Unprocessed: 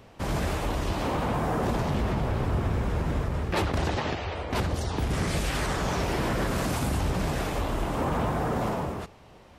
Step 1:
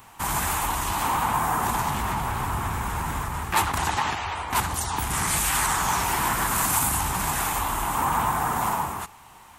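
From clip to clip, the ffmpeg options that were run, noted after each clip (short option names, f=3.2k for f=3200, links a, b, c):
-af "lowshelf=f=710:t=q:w=3:g=-8,aexciter=amount=5.6:drive=2.7:freq=6.9k,volume=4.5dB"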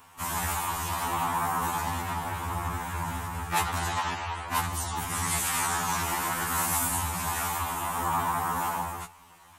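-af "afftfilt=real='re*2*eq(mod(b,4),0)':imag='im*2*eq(mod(b,4),0)':win_size=2048:overlap=0.75,volume=-2dB"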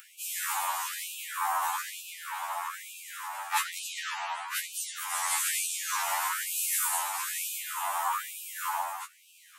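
-af "acompressor=mode=upward:threshold=-44dB:ratio=2.5,afftfilt=real='re*gte(b*sr/1024,550*pow(2400/550,0.5+0.5*sin(2*PI*1.1*pts/sr)))':imag='im*gte(b*sr/1024,550*pow(2400/550,0.5+0.5*sin(2*PI*1.1*pts/sr)))':win_size=1024:overlap=0.75"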